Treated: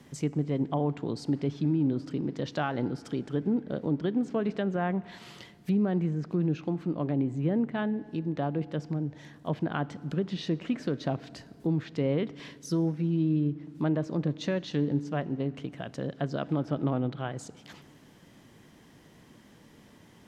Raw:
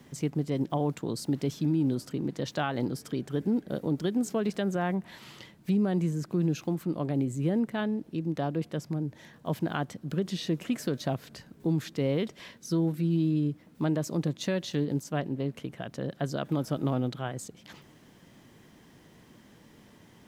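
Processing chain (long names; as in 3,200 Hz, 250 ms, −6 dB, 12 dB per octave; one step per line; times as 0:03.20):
treble cut that deepens with the level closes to 2,700 Hz, closed at −26 dBFS
on a send: convolution reverb RT60 2.0 s, pre-delay 4 ms, DRR 18 dB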